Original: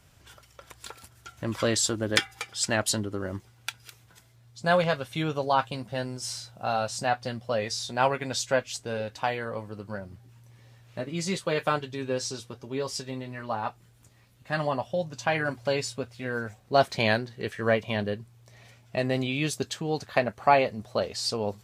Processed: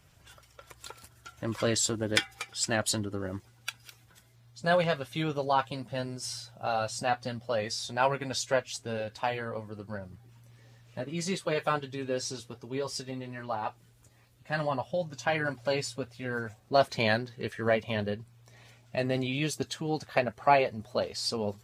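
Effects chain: bin magnitudes rounded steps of 15 dB; gain -2 dB

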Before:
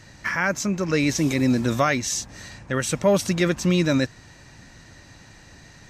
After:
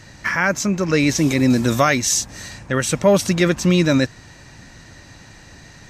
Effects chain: 1.5–2.68 high shelf 6800 Hz +7.5 dB; gain +4.5 dB

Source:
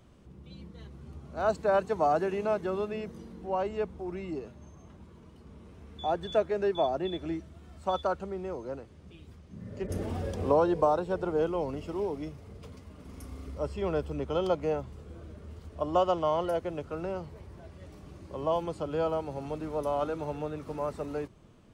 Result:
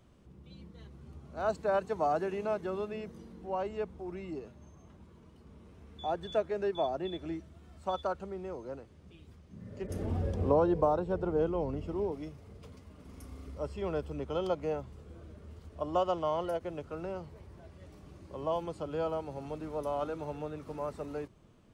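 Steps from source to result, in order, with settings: 10.02–12.12 tilt -2 dB/oct; ending taper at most 560 dB/s; gain -4 dB

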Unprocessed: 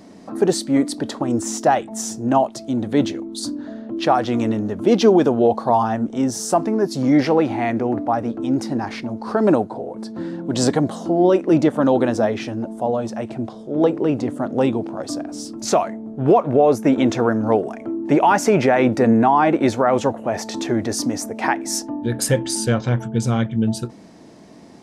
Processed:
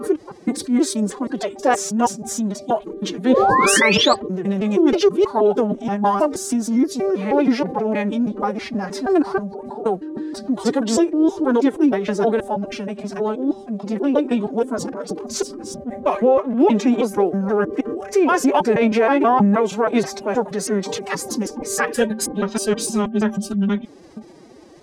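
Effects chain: slices in reverse order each 0.159 s, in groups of 3; painted sound rise, 3.29–4.15, 500–4600 Hz -14 dBFS; formant-preserving pitch shift +10 st

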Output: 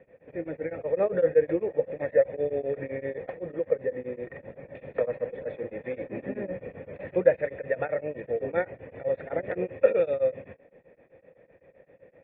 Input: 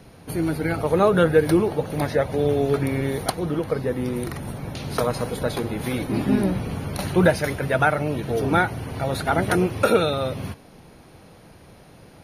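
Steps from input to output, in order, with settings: vocal tract filter e; low shelf 92 Hz -7.5 dB; beating tremolo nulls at 7.8 Hz; gain +6.5 dB

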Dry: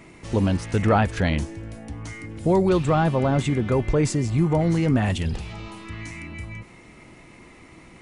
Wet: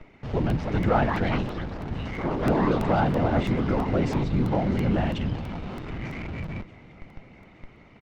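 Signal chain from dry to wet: HPF 70 Hz 6 dB/oct; comb 1.4 ms, depth 36%; whisperiser; in parallel at -8 dB: Schmitt trigger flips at -36.5 dBFS; on the sum: echoes that change speed 0.4 s, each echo +5 st, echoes 3, each echo -6 dB; air absorption 220 m; swung echo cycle 0.872 s, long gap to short 3:1, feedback 55%, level -23.5 dB; crackling interface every 0.33 s, samples 64, repeat, from 0.5; gain -4.5 dB

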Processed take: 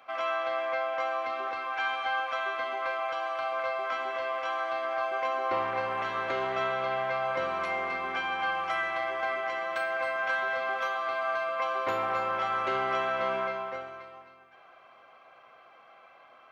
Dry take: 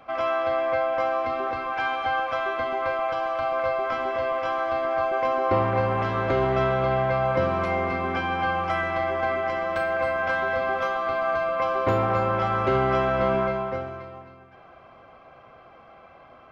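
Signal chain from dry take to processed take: HPF 1400 Hz 6 dB/oct; notch 5000 Hz, Q 20

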